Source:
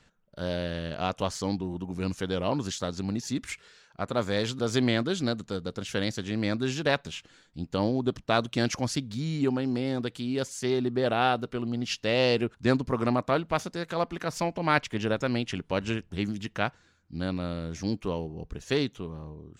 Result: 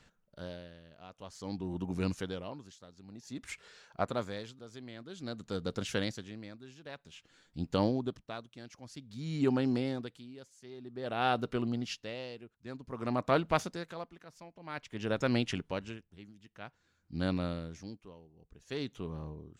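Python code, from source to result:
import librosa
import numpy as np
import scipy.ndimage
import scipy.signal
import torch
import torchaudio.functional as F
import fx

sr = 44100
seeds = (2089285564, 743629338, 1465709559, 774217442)

y = fx.peak_eq(x, sr, hz=690.0, db=5.0, octaves=1.3, at=(3.11, 4.06))
y = y * 10.0 ** (-22 * (0.5 - 0.5 * np.cos(2.0 * np.pi * 0.52 * np.arange(len(y)) / sr)) / 20.0)
y = F.gain(torch.from_numpy(y), -1.0).numpy()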